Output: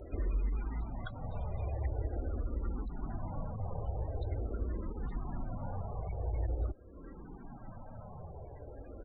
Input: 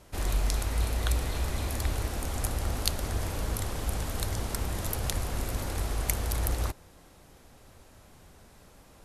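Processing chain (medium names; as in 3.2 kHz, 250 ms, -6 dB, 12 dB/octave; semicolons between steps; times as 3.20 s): compression 2.5:1, threshold -49 dBFS, peak gain reduction 18 dB; loudest bins only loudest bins 32; resampled via 8 kHz; barber-pole phaser -0.45 Hz; trim +12 dB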